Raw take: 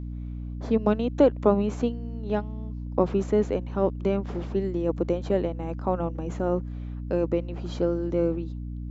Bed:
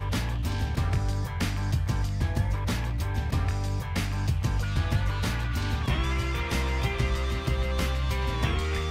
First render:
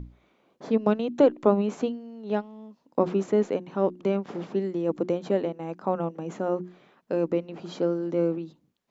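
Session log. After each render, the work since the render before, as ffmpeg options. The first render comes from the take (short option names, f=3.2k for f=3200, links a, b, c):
-af "bandreject=f=60:t=h:w=6,bandreject=f=120:t=h:w=6,bandreject=f=180:t=h:w=6,bandreject=f=240:t=h:w=6,bandreject=f=300:t=h:w=6,bandreject=f=360:t=h:w=6"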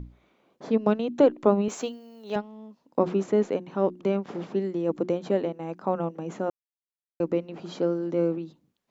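-filter_complex "[0:a]asettb=1/sr,asplit=3[a][b][c];[a]atrim=end=1.684[d];[b]atrim=start=1.68:end=2.36,asetpts=PTS-STARTPTS,afade=t=in:d=0.004:c=qsin,afade=t=out:st=0.676:d=0.004:c=qsin,aemphasis=mode=production:type=riaa[e];[c]atrim=start=2.356[f];[d][e]acrossfade=d=0.004:c1=hsin:c2=qsin[g];[g][f]acrossfade=d=0.004:c1=qsin:c2=hsin,asplit=3[h][i][j];[h]atrim=end=6.5,asetpts=PTS-STARTPTS,afade=t=out:st=6.496:d=0.004:c=hsin[k];[i]atrim=start=6.5:end=7.2,asetpts=PTS-STARTPTS,volume=0[l];[j]atrim=start=7.2,asetpts=PTS-STARTPTS,afade=t=in:d=0.004:c=hsin[m];[k][l][m]concat=n=3:v=0:a=1"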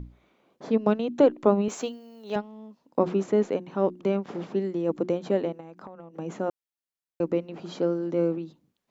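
-filter_complex "[0:a]asplit=3[a][b][c];[a]afade=t=out:st=5.59:d=0.02[d];[b]acompressor=threshold=-39dB:ratio=12:attack=3.2:release=140:knee=1:detection=peak,afade=t=in:st=5.59:d=0.02,afade=t=out:st=6.13:d=0.02[e];[c]afade=t=in:st=6.13:d=0.02[f];[d][e][f]amix=inputs=3:normalize=0"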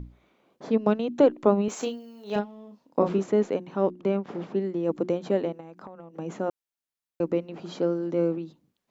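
-filter_complex "[0:a]asettb=1/sr,asplit=3[a][b][c];[a]atrim=end=1.734[d];[b]atrim=start=1.73:end=3.19,asetpts=PTS-STARTPTS,afade=t=in:d=0.004:c=qsin,afade=t=out:st=1.456:d=0.004:c=qsin,asplit=2[e][f];[f]adelay=34,volume=-5.5dB[g];[e][g]amix=inputs=2:normalize=0,atrim=end_sample=64386[h];[c]atrim=start=3.186[i];[d][h]acrossfade=d=0.004:c1=hsin:c2=qsin[j];[j][i]acrossfade=d=0.004:c1=qsin:c2=hsin,asettb=1/sr,asplit=3[k][l][m];[k]atrim=end=3.914[n];[l]atrim=start=3.91:end=4.83,asetpts=PTS-STARTPTS,afade=t=in:d=0.004:c=qsin,afade=t=out:st=0.916:d=0.004:c=qsin,highshelf=f=4.9k:g=-8[o];[m]atrim=start=4.826[p];[n][o]acrossfade=d=0.004:c1=hsin:c2=qsin[q];[q][p]acrossfade=d=0.004:c1=qsin:c2=hsin"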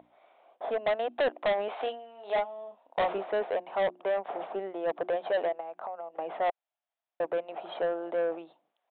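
-af "highpass=f=690:t=q:w=4.9,aresample=8000,asoftclip=type=tanh:threshold=-23dB,aresample=44100"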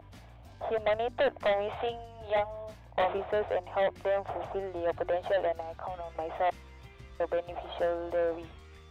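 -filter_complex "[1:a]volume=-23.5dB[a];[0:a][a]amix=inputs=2:normalize=0"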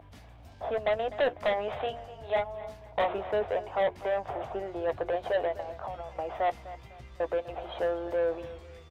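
-filter_complex "[0:a]asplit=2[a][b];[b]adelay=14,volume=-12.5dB[c];[a][c]amix=inputs=2:normalize=0,asplit=2[d][e];[e]adelay=251,lowpass=f=3.3k:p=1,volume=-15.5dB,asplit=2[f][g];[g]adelay=251,lowpass=f=3.3k:p=1,volume=0.35,asplit=2[h][i];[i]adelay=251,lowpass=f=3.3k:p=1,volume=0.35[j];[d][f][h][j]amix=inputs=4:normalize=0"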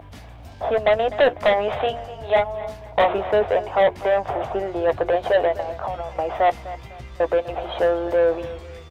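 -af "volume=10dB"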